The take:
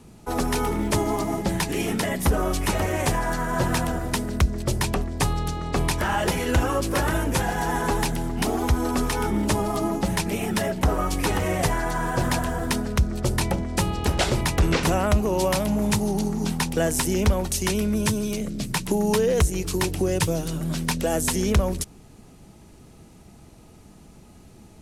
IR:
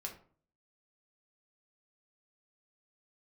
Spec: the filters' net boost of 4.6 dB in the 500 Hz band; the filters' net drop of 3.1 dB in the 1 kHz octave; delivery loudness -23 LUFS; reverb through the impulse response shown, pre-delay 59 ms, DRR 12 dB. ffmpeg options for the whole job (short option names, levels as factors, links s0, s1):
-filter_complex "[0:a]equalizer=f=500:t=o:g=7.5,equalizer=f=1000:t=o:g=-7,asplit=2[s0][s1];[1:a]atrim=start_sample=2205,adelay=59[s2];[s1][s2]afir=irnorm=-1:irlink=0,volume=0.316[s3];[s0][s3]amix=inputs=2:normalize=0"